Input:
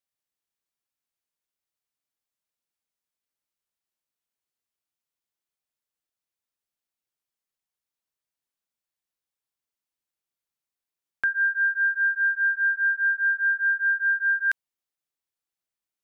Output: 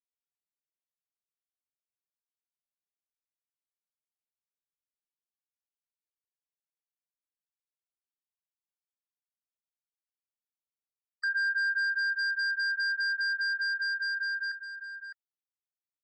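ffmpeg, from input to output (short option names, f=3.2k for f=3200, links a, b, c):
-filter_complex "[0:a]acompressor=threshold=-25dB:ratio=5,asoftclip=type=hard:threshold=-27dB,asettb=1/sr,asplit=3[a][b][c];[a]atrim=end=12.134[d];[b]atrim=start=12.13:end=14.17,asetpts=PTS-STARTPTS,afade=t=in:d=0.004:c=qsin,afade=t=out:st=2.036:d=0.004:c=qsin,equalizer=f=1.6k:t=o:w=0.77:g=-3.5[e];[c]atrim=start=14.166[f];[d][e]acrossfade=d=0.004:c1=hsin:c2=qsin[g];[g][f]acrossfade=d=0.004:c1=qsin:c2=hsin,afftfilt=real='re*gte(hypot(re,im),0.0178)':imag='im*gte(hypot(re,im),0.0178)':win_size=1024:overlap=0.75,highpass=1.2k,alimiter=level_in=7.5dB:limit=-24dB:level=0:latency=1:release=333,volume=-7.5dB,asoftclip=type=tanh:threshold=-28dB,dynaudnorm=f=230:g=17:m=9dB,aecho=1:1:608:0.316"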